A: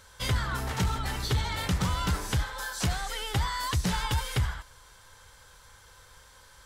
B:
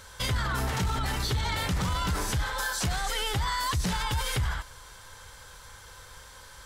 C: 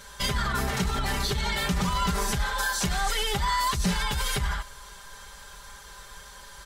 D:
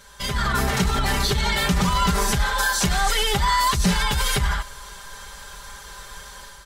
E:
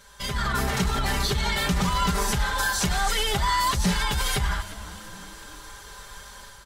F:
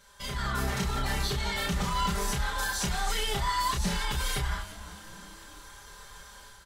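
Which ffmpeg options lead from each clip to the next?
-af "alimiter=level_in=3dB:limit=-24dB:level=0:latency=1:release=22,volume=-3dB,volume=6dB"
-af "aecho=1:1:5:0.93"
-af "dynaudnorm=f=230:g=3:m=8.5dB,volume=-2.5dB"
-filter_complex "[0:a]asplit=5[a][b][c][d][e];[b]adelay=355,afreqshift=-120,volume=-16.5dB[f];[c]adelay=710,afreqshift=-240,volume=-23.2dB[g];[d]adelay=1065,afreqshift=-360,volume=-30dB[h];[e]adelay=1420,afreqshift=-480,volume=-36.7dB[i];[a][f][g][h][i]amix=inputs=5:normalize=0,volume=-3.5dB"
-filter_complex "[0:a]asplit=2[a][b];[b]adelay=30,volume=-4dB[c];[a][c]amix=inputs=2:normalize=0,volume=-7dB"

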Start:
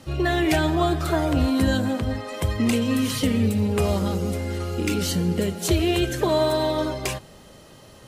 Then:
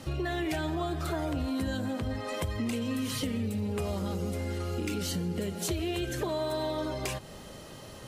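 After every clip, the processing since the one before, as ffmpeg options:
-filter_complex "[0:a]asplit=2[a][b];[b]alimiter=limit=-20.5dB:level=0:latency=1,volume=-1dB[c];[a][c]amix=inputs=2:normalize=0,acompressor=threshold=-28dB:ratio=3,volume=-4dB"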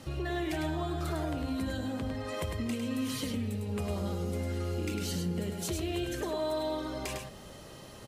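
-af "aecho=1:1:103:0.562,volume=-3.5dB"

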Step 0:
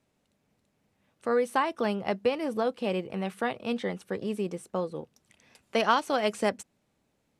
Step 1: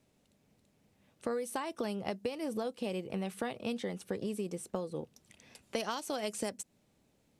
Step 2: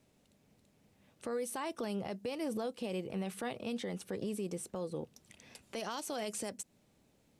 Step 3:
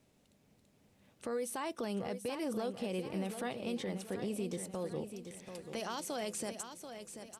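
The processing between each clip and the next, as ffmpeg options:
-filter_complex "[0:a]equalizer=f=1.3k:t=o:w=1.8:g=-5,acrossover=split=5600[a][b];[a]acompressor=threshold=-36dB:ratio=10[c];[c][b]amix=inputs=2:normalize=0,volume=3.5dB"
-af "alimiter=level_in=7dB:limit=-24dB:level=0:latency=1:release=31,volume=-7dB,volume=1.5dB"
-af "aecho=1:1:736|1472|2208|2944|3680:0.355|0.145|0.0596|0.0245|0.01"

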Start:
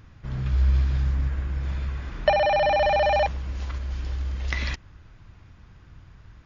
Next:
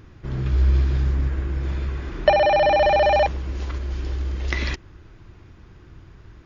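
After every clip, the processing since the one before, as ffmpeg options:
-af "equalizer=f=360:t=o:w=0.62:g=11,volume=2.5dB"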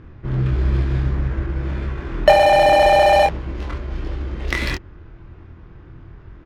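-filter_complex "[0:a]asplit=2[a][b];[b]adelay=24,volume=-4dB[c];[a][c]amix=inputs=2:normalize=0,adynamicsmooth=sensitivity=6:basefreq=2.4k,volume=3.5dB"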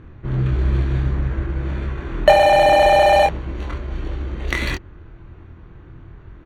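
-af "asuperstop=centerf=5100:order=20:qfactor=6.5"

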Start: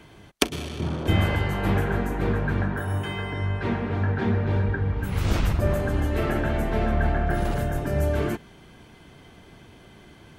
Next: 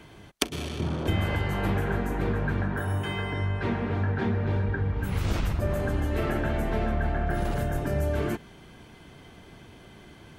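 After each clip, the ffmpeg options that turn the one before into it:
-af "acompressor=threshold=-24dB:ratio=2.5"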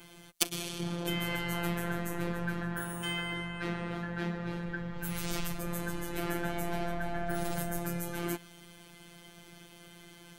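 -af "asoftclip=type=tanh:threshold=-15dB,afftfilt=real='hypot(re,im)*cos(PI*b)':imag='0':win_size=1024:overlap=0.75,crystalizer=i=3:c=0,volume=-2.5dB"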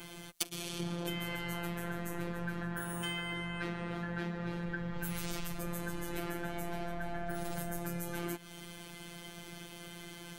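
-af "acompressor=threshold=-38dB:ratio=6,volume=5dB"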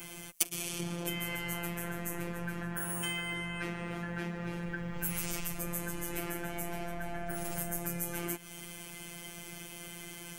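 -af "aexciter=amount=1.3:drive=5:freq=2.1k"

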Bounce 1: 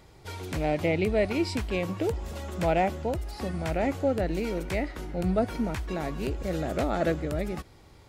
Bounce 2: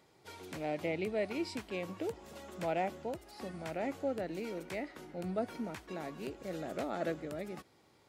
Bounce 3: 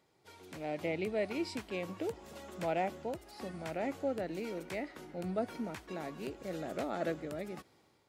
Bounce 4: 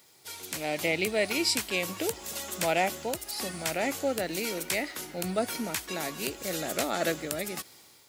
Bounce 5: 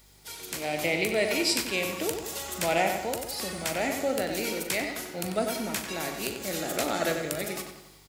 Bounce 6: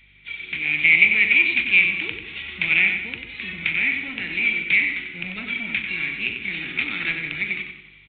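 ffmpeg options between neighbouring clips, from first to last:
-af "highpass=180,volume=-9dB"
-af "dynaudnorm=f=430:g=3:m=7dB,volume=-6.5dB"
-af "crystalizer=i=8:c=0,volume=4dB"
-filter_complex "[0:a]aeval=exprs='val(0)+0.001*(sin(2*PI*50*n/s)+sin(2*PI*2*50*n/s)/2+sin(2*PI*3*50*n/s)/3+sin(2*PI*4*50*n/s)/4+sin(2*PI*5*50*n/s)/5)':c=same,asplit=2[a][b];[b]adelay=41,volume=-11dB[c];[a][c]amix=inputs=2:normalize=0,asplit=2[d][e];[e]adelay=93,lowpass=f=3.6k:p=1,volume=-5.5dB,asplit=2[f][g];[g]adelay=93,lowpass=f=3.6k:p=1,volume=0.5,asplit=2[h][i];[i]adelay=93,lowpass=f=3.6k:p=1,volume=0.5,asplit=2[j][k];[k]adelay=93,lowpass=f=3.6k:p=1,volume=0.5,asplit=2[l][m];[m]adelay=93,lowpass=f=3.6k:p=1,volume=0.5,asplit=2[n][o];[o]adelay=93,lowpass=f=3.6k:p=1,volume=0.5[p];[d][f][h][j][l][n][p]amix=inputs=7:normalize=0"
-filter_complex "[0:a]acrossover=split=340[a][b];[a]asoftclip=type=hard:threshold=-36.5dB[c];[b]highpass=f=2.3k:t=q:w=7.9[d];[c][d]amix=inputs=2:normalize=0,volume=1.5dB" -ar 8000 -c:a adpcm_g726 -b:a 32k

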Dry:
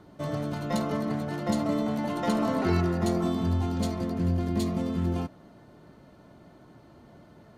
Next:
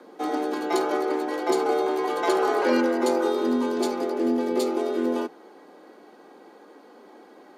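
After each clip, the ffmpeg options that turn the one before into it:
-af "afreqshift=160,asubboost=boost=5.5:cutoff=76,volume=4.5dB"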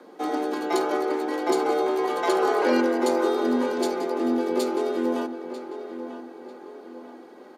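-filter_complex "[0:a]asplit=2[a][b];[b]adelay=944,lowpass=f=3.2k:p=1,volume=-10.5dB,asplit=2[c][d];[d]adelay=944,lowpass=f=3.2k:p=1,volume=0.44,asplit=2[e][f];[f]adelay=944,lowpass=f=3.2k:p=1,volume=0.44,asplit=2[g][h];[h]adelay=944,lowpass=f=3.2k:p=1,volume=0.44,asplit=2[i][j];[j]adelay=944,lowpass=f=3.2k:p=1,volume=0.44[k];[a][c][e][g][i][k]amix=inputs=6:normalize=0"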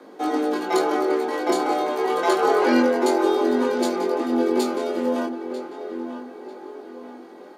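-af "flanger=delay=18.5:depth=6.9:speed=0.3,volume=6dB"

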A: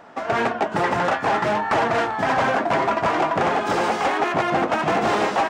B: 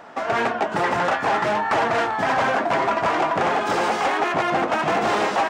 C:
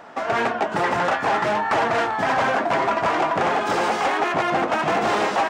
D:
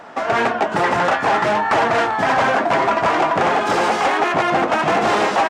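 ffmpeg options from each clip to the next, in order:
-filter_complex "[0:a]lowshelf=f=350:g=-4.5,asplit=2[a][b];[b]alimiter=limit=-22dB:level=0:latency=1:release=32,volume=1.5dB[c];[a][c]amix=inputs=2:normalize=0,volume=-3dB"
-af anull
-af "aresample=32000,aresample=44100,volume=4dB"

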